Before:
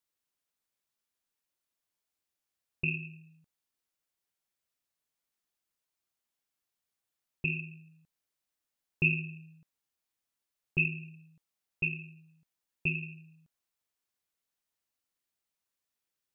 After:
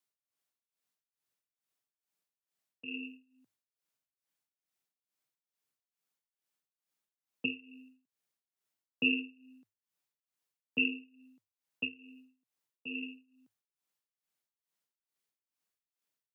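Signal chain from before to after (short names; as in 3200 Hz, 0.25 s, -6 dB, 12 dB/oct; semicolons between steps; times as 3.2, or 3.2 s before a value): tremolo 2.3 Hz, depth 87%; frequency shift +98 Hz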